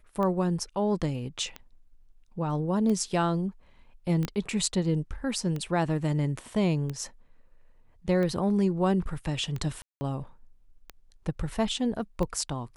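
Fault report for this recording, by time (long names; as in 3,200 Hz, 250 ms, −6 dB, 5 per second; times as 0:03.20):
scratch tick 45 rpm −21 dBFS
0:04.25: click −16 dBFS
0:09.82–0:10.01: drop-out 190 ms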